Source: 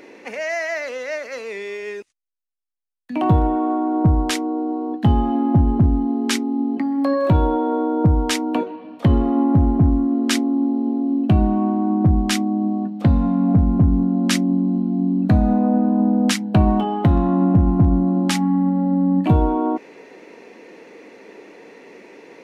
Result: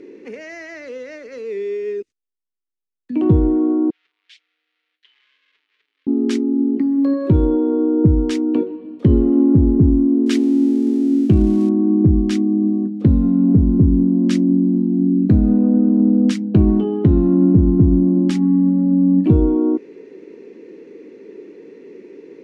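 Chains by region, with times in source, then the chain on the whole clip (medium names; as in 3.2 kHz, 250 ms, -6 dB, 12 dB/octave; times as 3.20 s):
3.90–6.07 s: comb filter that takes the minimum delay 6.7 ms + Butterworth band-pass 2.7 kHz, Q 1.4 + differentiator
10.26–11.69 s: zero-crossing glitches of -21.5 dBFS + dynamic bell 2.5 kHz, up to +4 dB, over -34 dBFS, Q 0.81
whole clip: low-pass 7.5 kHz 12 dB/octave; resonant low shelf 530 Hz +9.5 dB, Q 3; trim -8.5 dB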